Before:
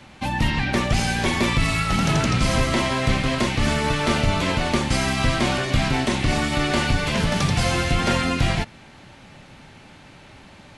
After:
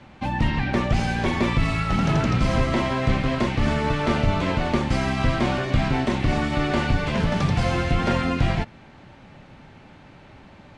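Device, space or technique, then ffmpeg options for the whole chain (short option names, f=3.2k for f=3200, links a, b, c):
through cloth: -af "lowpass=8k,highshelf=f=2.7k:g=-11"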